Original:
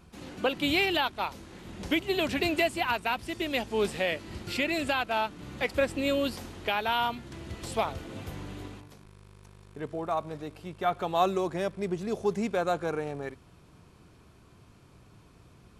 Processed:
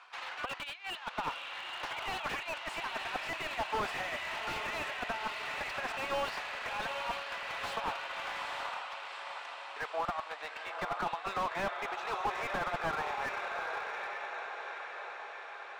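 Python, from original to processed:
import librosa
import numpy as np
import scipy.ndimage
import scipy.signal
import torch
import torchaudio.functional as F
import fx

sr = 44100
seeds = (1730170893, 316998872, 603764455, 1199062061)

y = fx.tube_stage(x, sr, drive_db=18.0, bias=0.45)
y = scipy.signal.sosfilt(scipy.signal.butter(4, 870.0, 'highpass', fs=sr, output='sos'), y)
y = fx.over_compress(y, sr, threshold_db=-39.0, ratio=-0.5)
y = fx.transient(y, sr, attack_db=4, sustain_db=-5)
y = scipy.signal.sosfilt(scipy.signal.butter(2, 2900.0, 'lowpass', fs=sr, output='sos'), y)
y = fx.echo_diffused(y, sr, ms=859, feedback_pct=63, wet_db=-7.5)
y = fx.slew_limit(y, sr, full_power_hz=13.0)
y = y * 10.0 ** (8.0 / 20.0)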